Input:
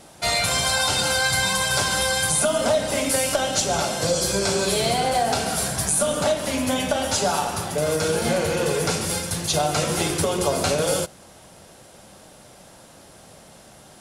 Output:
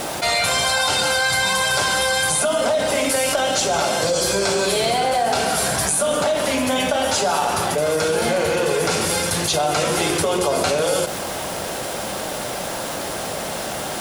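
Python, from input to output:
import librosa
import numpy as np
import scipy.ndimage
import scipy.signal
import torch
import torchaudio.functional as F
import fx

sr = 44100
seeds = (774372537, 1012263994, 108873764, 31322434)

y = fx.bass_treble(x, sr, bass_db=-8, treble_db=-4)
y = fx.quant_dither(y, sr, seeds[0], bits=10, dither='triangular')
y = fx.env_flatten(y, sr, amount_pct=70)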